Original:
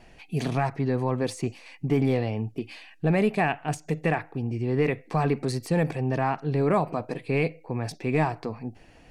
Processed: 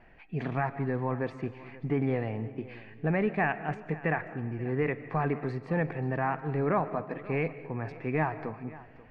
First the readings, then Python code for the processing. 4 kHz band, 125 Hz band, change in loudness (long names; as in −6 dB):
below −10 dB, −5.5 dB, −4.5 dB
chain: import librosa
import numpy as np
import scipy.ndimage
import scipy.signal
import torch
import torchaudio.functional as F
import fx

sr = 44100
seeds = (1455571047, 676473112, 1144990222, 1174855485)

p1 = fx.lowpass_res(x, sr, hz=1800.0, q=1.8)
p2 = p1 + fx.echo_feedback(p1, sr, ms=535, feedback_pct=33, wet_db=-19, dry=0)
p3 = fx.rev_freeverb(p2, sr, rt60_s=0.91, hf_ratio=0.7, predelay_ms=105, drr_db=14.5)
y = p3 * librosa.db_to_amplitude(-5.5)